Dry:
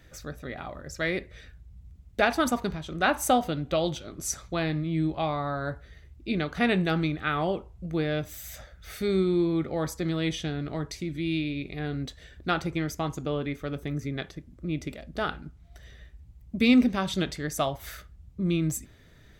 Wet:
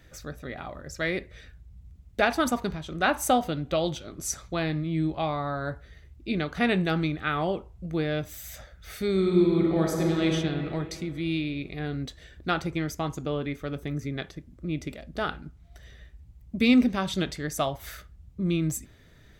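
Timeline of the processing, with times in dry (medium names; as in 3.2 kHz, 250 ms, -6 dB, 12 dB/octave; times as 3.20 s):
9.11–10.26 s: reverb throw, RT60 2.8 s, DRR -0.5 dB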